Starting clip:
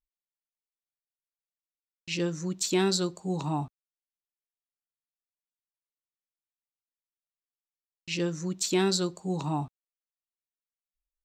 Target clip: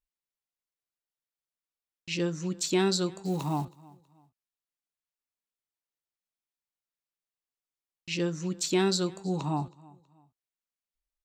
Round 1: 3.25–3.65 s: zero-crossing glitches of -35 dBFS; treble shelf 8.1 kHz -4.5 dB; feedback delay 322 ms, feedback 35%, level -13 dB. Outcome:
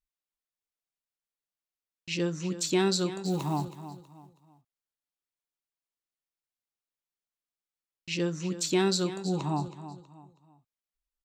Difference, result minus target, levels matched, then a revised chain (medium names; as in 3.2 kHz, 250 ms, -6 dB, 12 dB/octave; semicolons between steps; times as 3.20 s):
echo-to-direct +10 dB
3.25–3.65 s: zero-crossing glitches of -35 dBFS; treble shelf 8.1 kHz -4.5 dB; feedback delay 322 ms, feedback 35%, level -23 dB